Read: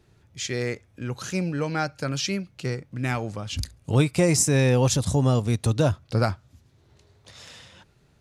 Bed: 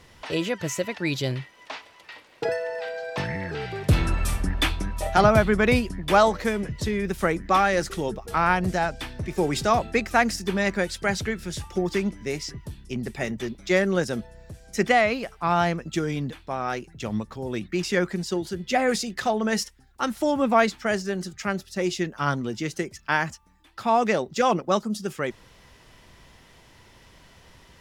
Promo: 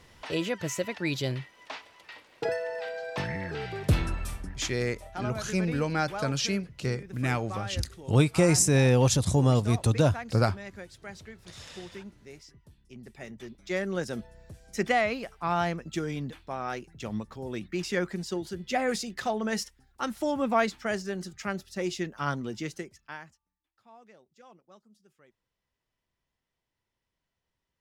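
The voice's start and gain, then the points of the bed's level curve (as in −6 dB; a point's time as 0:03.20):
4.20 s, −1.5 dB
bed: 0:03.89 −3.5 dB
0:04.79 −18.5 dB
0:12.76 −18.5 dB
0:14.20 −5.5 dB
0:22.65 −5.5 dB
0:23.69 −33 dB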